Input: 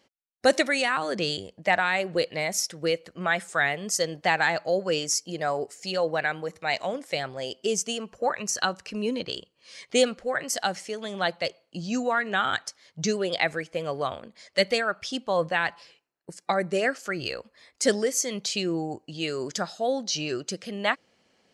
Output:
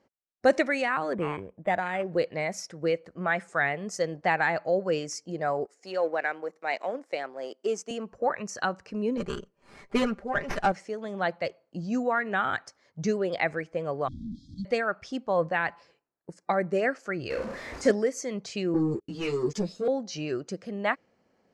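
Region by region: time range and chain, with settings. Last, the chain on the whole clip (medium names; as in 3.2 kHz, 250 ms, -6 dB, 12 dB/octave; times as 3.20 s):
1.13–2.12 s: peaking EQ 1.3 kHz -6 dB 0.84 oct + decimation joined by straight lines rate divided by 8×
5.65–7.91 s: companding laws mixed up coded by A + high-pass 250 Hz 24 dB/octave
9.17–10.72 s: comb 5 ms, depth 92% + sliding maximum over 5 samples
14.08–14.65 s: one-bit delta coder 64 kbps, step -27 dBFS + brick-wall FIR band-stop 320–3200 Hz + tape spacing loss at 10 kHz 32 dB
17.30–17.91 s: jump at every zero crossing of -29.5 dBFS + treble shelf 4.6 kHz -4 dB + flutter echo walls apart 5.9 m, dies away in 0.32 s
18.74–19.88 s: Chebyshev band-stop 460–2400 Hz, order 3 + waveshaping leveller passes 3 + three-phase chorus
whole clip: dynamic bell 2.4 kHz, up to +6 dB, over -39 dBFS, Q 1.3; low-pass 4.7 kHz 12 dB/octave; peaking EQ 3.3 kHz -15 dB 1.4 oct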